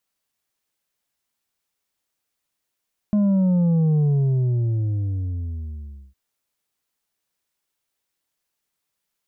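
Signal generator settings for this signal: sub drop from 210 Hz, over 3.01 s, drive 5 dB, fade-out 2.15 s, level -16 dB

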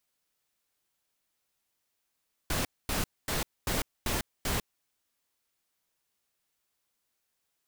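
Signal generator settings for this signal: noise bursts pink, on 0.15 s, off 0.24 s, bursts 6, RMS -30 dBFS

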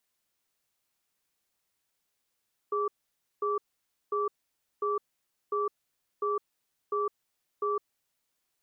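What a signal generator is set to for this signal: cadence 413 Hz, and 1.16 kHz, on 0.16 s, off 0.54 s, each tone -29 dBFS 5.51 s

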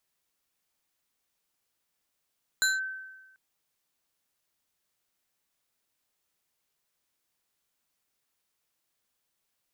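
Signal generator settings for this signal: FM tone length 0.74 s, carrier 1.54 kHz, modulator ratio 3.63, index 1.1, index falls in 0.18 s linear, decay 1.17 s, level -20 dB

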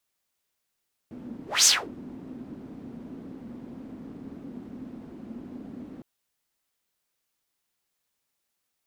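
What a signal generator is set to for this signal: whoosh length 4.91 s, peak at 0.54 s, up 0.20 s, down 0.26 s, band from 250 Hz, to 6.5 kHz, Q 4.5, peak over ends 25 dB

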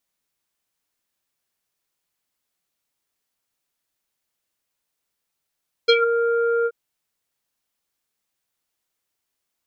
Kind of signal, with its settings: synth note square A#4 24 dB/octave, low-pass 1.2 kHz, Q 4.6, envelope 2 oct, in 0.17 s, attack 14 ms, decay 0.07 s, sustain -8.5 dB, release 0.05 s, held 0.78 s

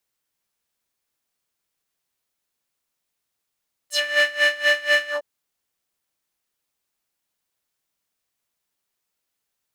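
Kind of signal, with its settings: synth patch with tremolo D5, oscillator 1 square, interval 0 st, sub -18 dB, noise -7 dB, filter bandpass, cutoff 670 Hz, Q 2.6, filter envelope 4 oct, filter decay 0.11 s, attack 203 ms, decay 0.05 s, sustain -6.5 dB, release 0.11 s, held 1.20 s, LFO 4.1 Hz, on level 21 dB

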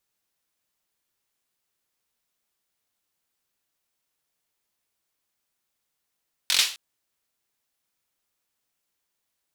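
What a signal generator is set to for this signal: hand clap length 0.26 s, bursts 5, apart 22 ms, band 3.6 kHz, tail 0.37 s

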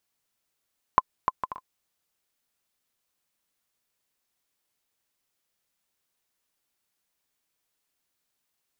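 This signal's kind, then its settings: bouncing ball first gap 0.30 s, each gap 0.52, 1.03 kHz, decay 35 ms -4.5 dBFS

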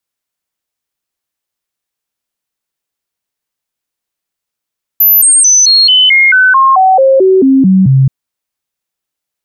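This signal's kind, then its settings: stepped sine 12.1 kHz down, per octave 2, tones 14, 0.22 s, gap 0.00 s -3 dBFS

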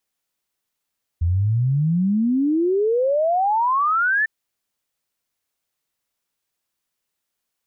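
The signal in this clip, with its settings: log sweep 81 Hz -> 1.8 kHz 3.05 s -16 dBFS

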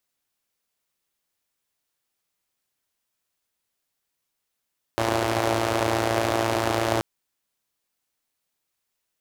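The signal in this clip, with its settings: four-cylinder engine model, steady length 2.03 s, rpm 3400, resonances 100/350/590 Hz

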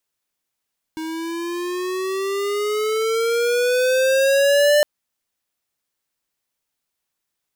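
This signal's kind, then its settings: gliding synth tone square, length 3.86 s, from 316 Hz, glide +11 st, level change +14 dB, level -14 dB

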